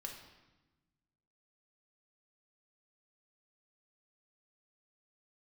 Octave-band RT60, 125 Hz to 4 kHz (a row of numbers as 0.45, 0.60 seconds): 1.8, 1.7, 1.1, 1.1, 1.0, 0.95 seconds